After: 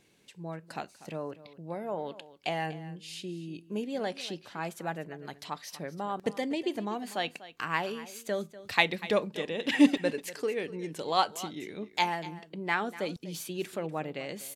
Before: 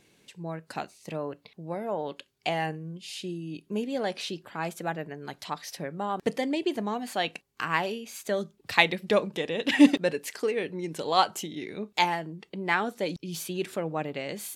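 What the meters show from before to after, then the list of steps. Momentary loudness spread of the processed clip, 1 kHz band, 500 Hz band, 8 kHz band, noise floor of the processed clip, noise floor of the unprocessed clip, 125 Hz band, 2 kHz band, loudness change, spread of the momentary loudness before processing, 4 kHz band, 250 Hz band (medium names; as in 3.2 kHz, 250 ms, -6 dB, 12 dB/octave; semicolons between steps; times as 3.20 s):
14 LU, -3.5 dB, -3.5 dB, -3.5 dB, -59 dBFS, -67 dBFS, -3.5 dB, -3.5 dB, -3.5 dB, 14 LU, -3.5 dB, -3.5 dB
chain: delay 244 ms -16.5 dB; trim -3.5 dB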